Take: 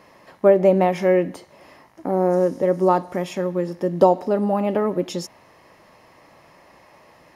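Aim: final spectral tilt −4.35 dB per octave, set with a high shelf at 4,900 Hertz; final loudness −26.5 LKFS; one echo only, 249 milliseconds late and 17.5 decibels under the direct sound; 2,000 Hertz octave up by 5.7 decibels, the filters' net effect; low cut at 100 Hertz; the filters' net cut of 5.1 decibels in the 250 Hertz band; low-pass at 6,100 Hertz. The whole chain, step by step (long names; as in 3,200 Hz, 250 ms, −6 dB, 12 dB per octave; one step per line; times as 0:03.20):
high-pass filter 100 Hz
low-pass filter 6,100 Hz
parametric band 250 Hz −9 dB
parametric band 2,000 Hz +5.5 dB
high-shelf EQ 4,900 Hz +9 dB
single-tap delay 249 ms −17.5 dB
level −5 dB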